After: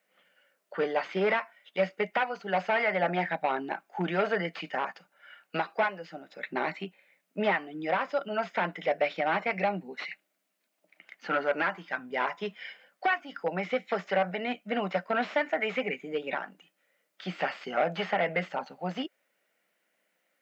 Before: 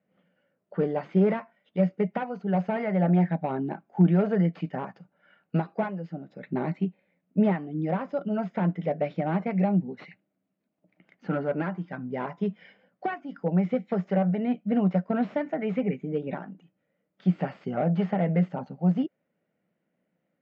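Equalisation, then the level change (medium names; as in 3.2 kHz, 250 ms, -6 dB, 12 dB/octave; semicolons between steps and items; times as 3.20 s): high-pass 320 Hz 12 dB/octave; tilt shelf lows -10 dB, about 900 Hz; +4.5 dB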